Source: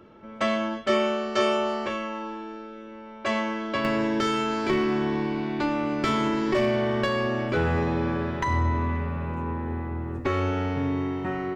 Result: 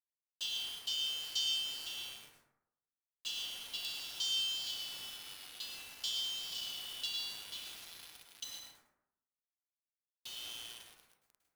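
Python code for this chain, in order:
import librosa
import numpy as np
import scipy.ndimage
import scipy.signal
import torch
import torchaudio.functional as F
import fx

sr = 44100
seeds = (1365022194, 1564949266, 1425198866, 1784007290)

y = scipy.signal.sosfilt(scipy.signal.butter(16, 2900.0, 'highpass', fs=sr, output='sos'), x)
y = fx.quant_dither(y, sr, seeds[0], bits=8, dither='none')
y = fx.rev_plate(y, sr, seeds[1], rt60_s=0.85, hf_ratio=0.4, predelay_ms=95, drr_db=1.0)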